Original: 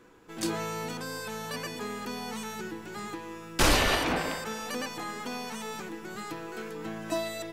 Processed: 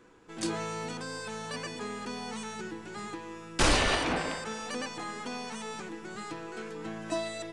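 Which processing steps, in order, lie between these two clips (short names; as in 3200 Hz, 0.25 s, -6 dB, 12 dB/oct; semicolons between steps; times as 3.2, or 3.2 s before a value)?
downsampling 22050 Hz; gain -1.5 dB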